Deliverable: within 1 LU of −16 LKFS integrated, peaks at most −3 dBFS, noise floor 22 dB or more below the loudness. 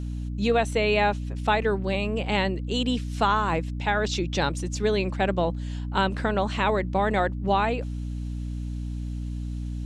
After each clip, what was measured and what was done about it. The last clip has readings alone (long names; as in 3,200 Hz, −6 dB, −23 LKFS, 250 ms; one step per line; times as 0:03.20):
mains hum 60 Hz; hum harmonics up to 300 Hz; level of the hum −29 dBFS; integrated loudness −26.0 LKFS; sample peak −9.0 dBFS; target loudness −16.0 LKFS
→ hum removal 60 Hz, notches 5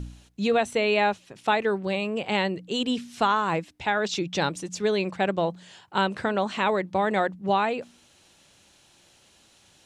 mains hum none found; integrated loudness −26.0 LKFS; sample peak −10.5 dBFS; target loudness −16.0 LKFS
→ level +10 dB
brickwall limiter −3 dBFS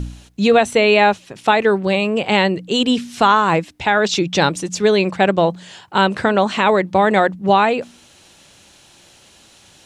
integrated loudness −16.0 LKFS; sample peak −3.0 dBFS; background noise floor −49 dBFS